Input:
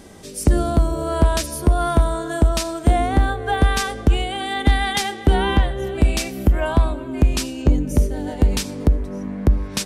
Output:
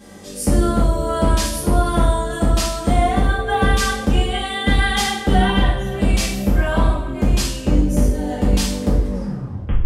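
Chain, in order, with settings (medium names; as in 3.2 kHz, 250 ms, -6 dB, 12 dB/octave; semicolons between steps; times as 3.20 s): tape stop on the ending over 0.73 s; two-slope reverb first 0.6 s, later 1.6 s, from -18 dB, DRR -10 dB; trim -7.5 dB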